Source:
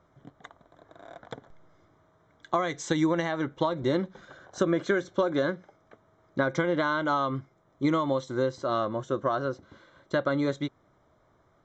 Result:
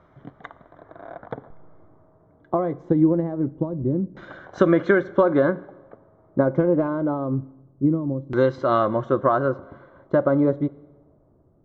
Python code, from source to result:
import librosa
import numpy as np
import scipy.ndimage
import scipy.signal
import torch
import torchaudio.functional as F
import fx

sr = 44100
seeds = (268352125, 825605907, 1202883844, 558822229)

y = fx.self_delay(x, sr, depth_ms=0.12, at=(6.48, 6.88))
y = fx.rev_schroeder(y, sr, rt60_s=1.3, comb_ms=30, drr_db=19.0)
y = fx.filter_lfo_lowpass(y, sr, shape='saw_down', hz=0.24, low_hz=210.0, high_hz=3000.0, q=0.81)
y = F.gain(torch.from_numpy(y), 8.0).numpy()